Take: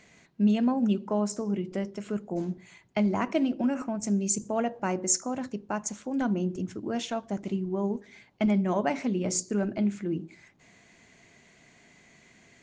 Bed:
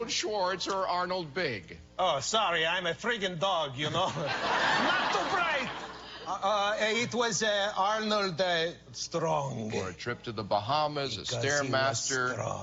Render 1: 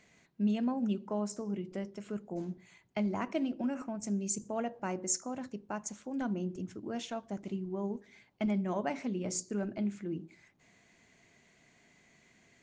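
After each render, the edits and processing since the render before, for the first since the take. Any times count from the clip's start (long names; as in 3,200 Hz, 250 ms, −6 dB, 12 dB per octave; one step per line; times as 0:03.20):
level −7 dB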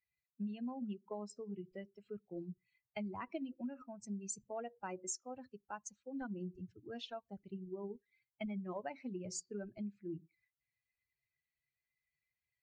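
spectral dynamics exaggerated over time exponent 2
downward compressor 5 to 1, threshold −39 dBFS, peak gain reduction 11.5 dB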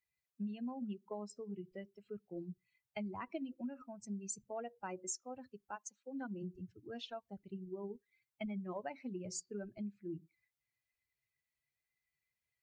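0:05.75–0:06.42: high-pass filter 350 Hz → 140 Hz 24 dB per octave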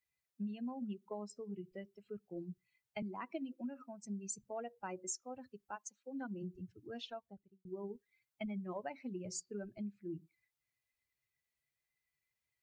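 0:03.02–0:04.06: high-pass filter 170 Hz 24 dB per octave
0:07.05–0:07.65: fade out and dull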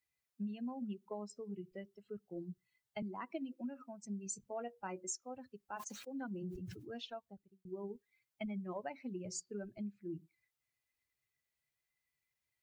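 0:01.86–0:03.32: notch filter 2,400 Hz, Q 6.3
0:04.24–0:05.03: double-tracking delay 21 ms −11.5 dB
0:05.69–0:06.96: level that may fall only so fast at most 53 dB per second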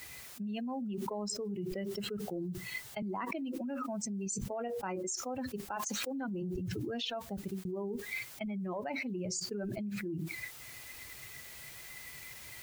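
envelope flattener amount 100%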